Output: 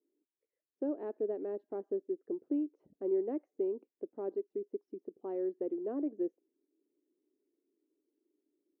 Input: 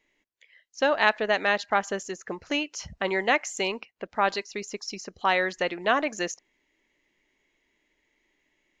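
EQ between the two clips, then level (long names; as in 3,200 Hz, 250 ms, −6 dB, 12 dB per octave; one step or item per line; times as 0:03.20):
flat-topped band-pass 340 Hz, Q 2.2
0.0 dB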